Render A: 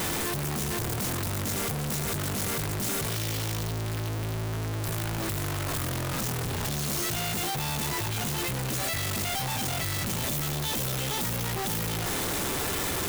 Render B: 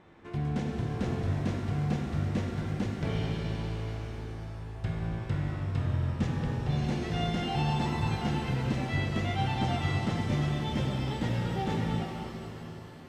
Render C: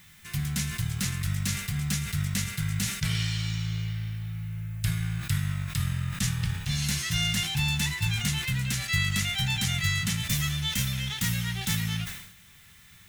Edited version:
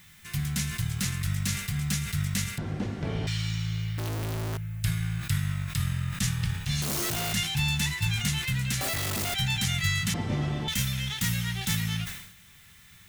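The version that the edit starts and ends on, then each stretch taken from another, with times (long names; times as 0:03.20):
C
0:02.58–0:03.27: punch in from B
0:03.98–0:04.57: punch in from A
0:06.82–0:07.33: punch in from A
0:08.81–0:09.34: punch in from A
0:10.14–0:10.68: punch in from B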